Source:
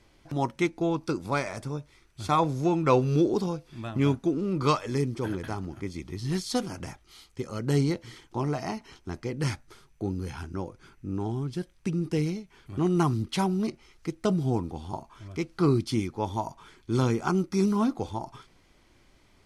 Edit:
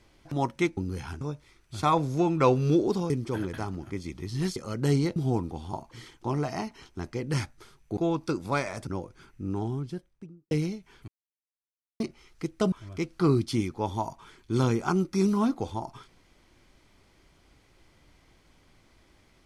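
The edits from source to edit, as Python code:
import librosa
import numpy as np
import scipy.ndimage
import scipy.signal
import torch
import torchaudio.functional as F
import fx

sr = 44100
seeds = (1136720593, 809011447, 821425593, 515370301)

y = fx.studio_fade_out(x, sr, start_s=11.21, length_s=0.94)
y = fx.edit(y, sr, fx.swap(start_s=0.77, length_s=0.9, other_s=10.07, other_length_s=0.44),
    fx.cut(start_s=3.56, length_s=1.44),
    fx.cut(start_s=6.46, length_s=0.95),
    fx.silence(start_s=12.72, length_s=0.92),
    fx.move(start_s=14.36, length_s=0.75, to_s=8.01), tone=tone)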